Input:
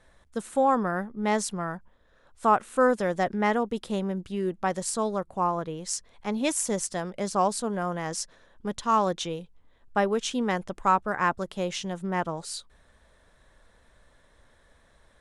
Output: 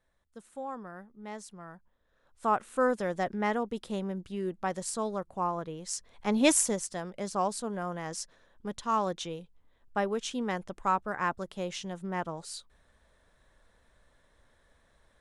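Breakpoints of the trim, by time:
1.48 s -16.5 dB
2.60 s -5 dB
5.90 s -5 dB
6.54 s +5 dB
6.79 s -5.5 dB

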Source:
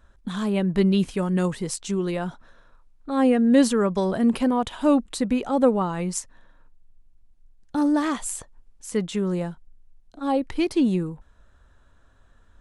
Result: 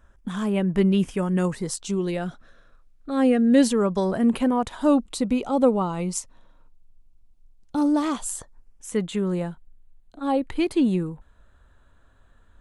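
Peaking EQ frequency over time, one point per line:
peaking EQ -13.5 dB 0.24 oct
1.43 s 4.1 kHz
2.26 s 930 Hz
3.54 s 930 Hz
4.35 s 5.5 kHz
5.06 s 1.7 kHz
8.08 s 1.7 kHz
9.03 s 5.5 kHz

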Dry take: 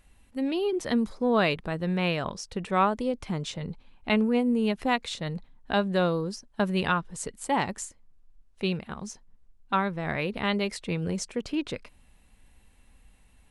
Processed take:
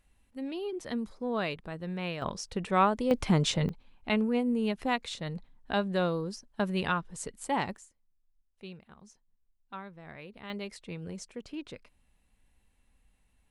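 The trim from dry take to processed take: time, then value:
-8.5 dB
from 2.22 s -1 dB
from 3.11 s +6.5 dB
from 3.69 s -4 dB
from 7.77 s -17 dB
from 10.50 s -10.5 dB

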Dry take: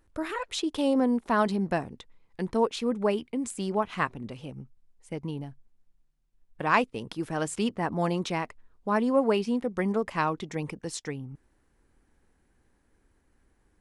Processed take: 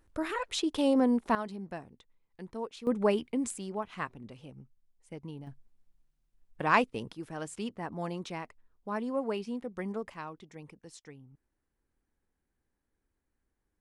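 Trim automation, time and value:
-1 dB
from 1.35 s -13 dB
from 2.87 s -0.5 dB
from 3.58 s -8.5 dB
from 5.47 s -1.5 dB
from 7.11 s -9 dB
from 10.14 s -15 dB

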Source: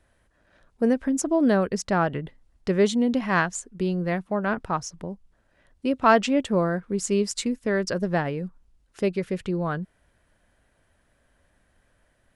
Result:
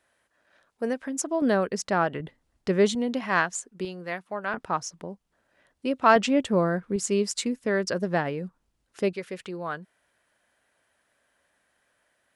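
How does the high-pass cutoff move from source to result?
high-pass 6 dB/octave
680 Hz
from 1.42 s 290 Hz
from 2.20 s 130 Hz
from 2.95 s 420 Hz
from 3.85 s 1 kHz
from 4.54 s 300 Hz
from 6.16 s 78 Hz
from 6.96 s 190 Hz
from 9.13 s 750 Hz

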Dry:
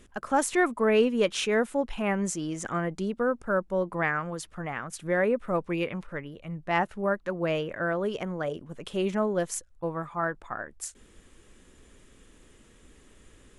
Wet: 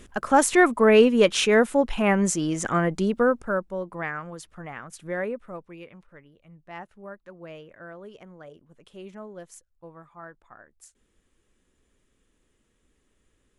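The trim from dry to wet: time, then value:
3.23 s +6.5 dB
3.78 s -4 dB
5.22 s -4 dB
5.72 s -14 dB

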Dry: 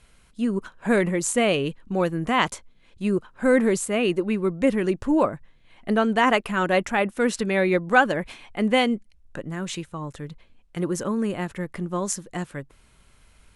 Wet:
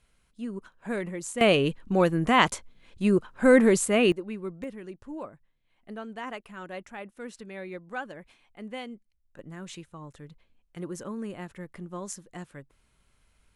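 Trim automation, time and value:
-11 dB
from 1.41 s +1 dB
from 4.12 s -11.5 dB
from 4.64 s -18 dB
from 9.39 s -10.5 dB

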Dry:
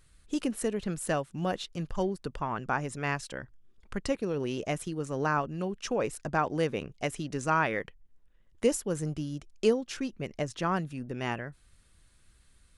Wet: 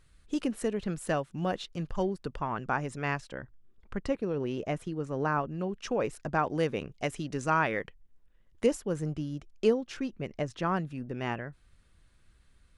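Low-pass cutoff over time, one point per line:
low-pass 6 dB/octave
4.7 kHz
from 3.20 s 1.9 kHz
from 5.69 s 3.9 kHz
from 6.50 s 6.9 kHz
from 8.66 s 3 kHz

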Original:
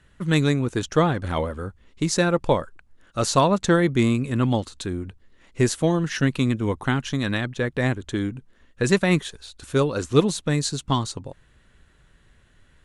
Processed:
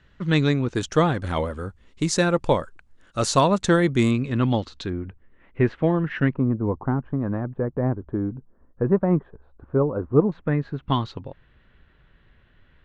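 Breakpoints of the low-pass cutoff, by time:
low-pass 24 dB/octave
5.5 kHz
from 0.75 s 10 kHz
from 4.11 s 5.2 kHz
from 4.90 s 2.4 kHz
from 6.34 s 1.1 kHz
from 10.32 s 1.9 kHz
from 10.83 s 3.5 kHz

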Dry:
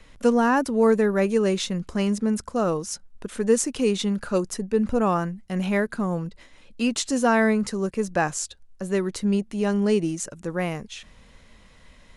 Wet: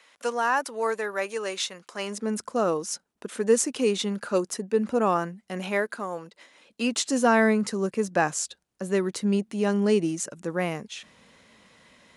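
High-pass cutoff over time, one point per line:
1.92 s 730 Hz
2.36 s 250 Hz
5.40 s 250 Hz
6.11 s 520 Hz
7.33 s 170 Hz

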